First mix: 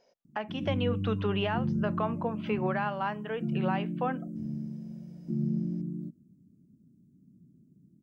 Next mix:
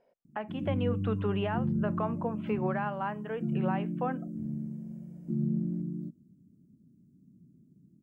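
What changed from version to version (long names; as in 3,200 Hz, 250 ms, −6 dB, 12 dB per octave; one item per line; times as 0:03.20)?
speech: add high-frequency loss of the air 440 metres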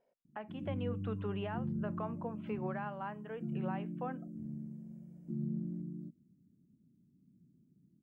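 speech −8.0 dB
background −7.5 dB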